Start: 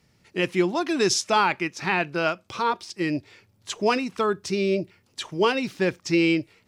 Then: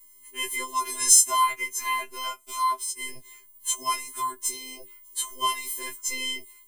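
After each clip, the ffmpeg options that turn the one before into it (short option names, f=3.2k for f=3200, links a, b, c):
-af "afftfilt=real='hypot(re,im)*cos(PI*b)':imag='0':win_size=512:overlap=0.75,aexciter=amount=9.9:drive=8.6:freq=7.5k,afftfilt=real='re*2.45*eq(mod(b,6),0)':imag='im*2.45*eq(mod(b,6),0)':win_size=2048:overlap=0.75,volume=2.5dB"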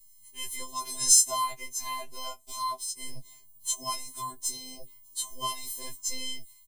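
-filter_complex "[0:a]firequalizer=gain_entry='entry(200,0);entry(330,-28);entry(480,-12);entry(770,-7);entry(1200,-17);entry(2500,-12);entry(4000,1);entry(9400,-5)':delay=0.05:min_phase=1,acrossover=split=200|850|1900[a][b][c][d];[b]dynaudnorm=f=120:g=11:m=11dB[e];[a][e][c][d]amix=inputs=4:normalize=0,lowshelf=f=240:g=7"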